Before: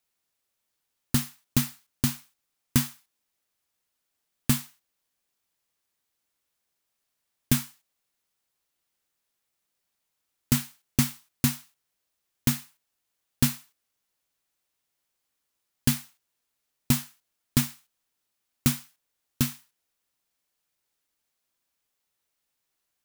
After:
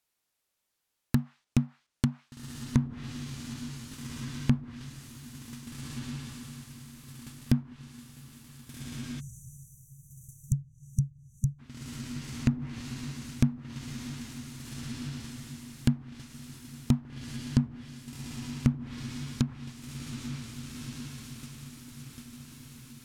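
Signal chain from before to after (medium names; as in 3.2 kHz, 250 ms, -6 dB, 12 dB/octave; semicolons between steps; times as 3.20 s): echo that smears into a reverb 1595 ms, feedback 47%, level -8 dB; low-pass that closes with the level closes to 540 Hz, closed at -22 dBFS; spectral selection erased 9.20–11.59 s, 210–5800 Hz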